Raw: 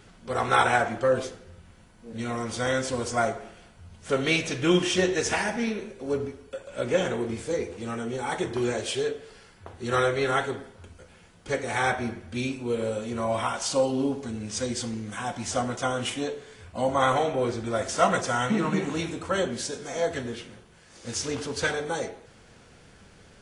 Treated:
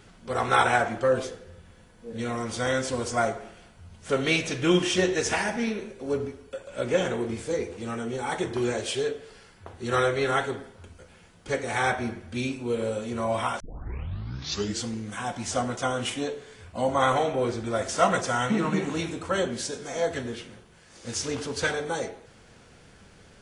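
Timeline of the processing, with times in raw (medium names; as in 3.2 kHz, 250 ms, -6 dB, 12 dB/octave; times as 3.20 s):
1.28–2.29 s: small resonant body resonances 480/1700/3400 Hz, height 8 dB
13.60 s: tape start 1.26 s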